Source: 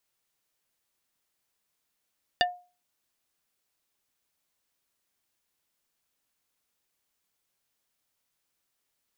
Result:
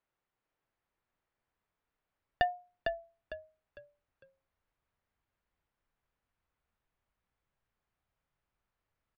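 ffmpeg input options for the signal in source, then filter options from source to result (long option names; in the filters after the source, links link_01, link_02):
-f lavfi -i "aevalsrc='0.112*pow(10,-3*t/0.34)*sin(2*PI*715*t)+0.106*pow(10,-3*t/0.113)*sin(2*PI*1787.5*t)+0.1*pow(10,-3*t/0.064)*sin(2*PI*2860*t)+0.0944*pow(10,-3*t/0.049)*sin(2*PI*3575*t)+0.0891*pow(10,-3*t/0.036)*sin(2*PI*4647.5*t)':duration=0.45:sample_rate=44100"
-filter_complex "[0:a]lowpass=1700,asubboost=boost=4:cutoff=130,asplit=5[link_01][link_02][link_03][link_04][link_05];[link_02]adelay=453,afreqshift=-44,volume=-5dB[link_06];[link_03]adelay=906,afreqshift=-88,volume=-14.9dB[link_07];[link_04]adelay=1359,afreqshift=-132,volume=-24.8dB[link_08];[link_05]adelay=1812,afreqshift=-176,volume=-34.7dB[link_09];[link_01][link_06][link_07][link_08][link_09]amix=inputs=5:normalize=0"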